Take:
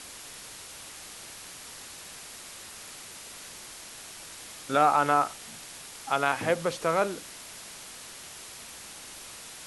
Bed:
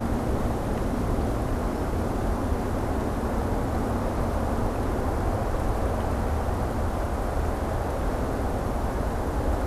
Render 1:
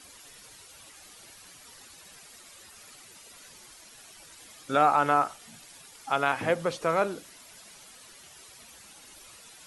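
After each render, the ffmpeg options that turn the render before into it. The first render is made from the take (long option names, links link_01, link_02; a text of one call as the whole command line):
ffmpeg -i in.wav -af "afftdn=noise_reduction=11:noise_floor=-45" out.wav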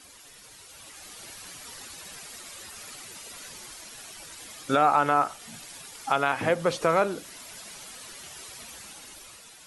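ffmpeg -i in.wav -af "dynaudnorm=framelen=210:gausssize=9:maxgain=7.5dB,alimiter=limit=-10dB:level=0:latency=1:release=356" out.wav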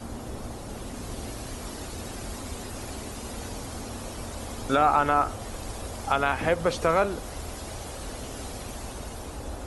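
ffmpeg -i in.wav -i bed.wav -filter_complex "[1:a]volume=-11dB[link_01];[0:a][link_01]amix=inputs=2:normalize=0" out.wav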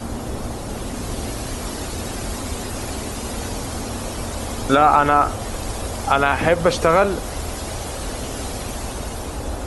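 ffmpeg -i in.wav -af "volume=9dB,alimiter=limit=-3dB:level=0:latency=1" out.wav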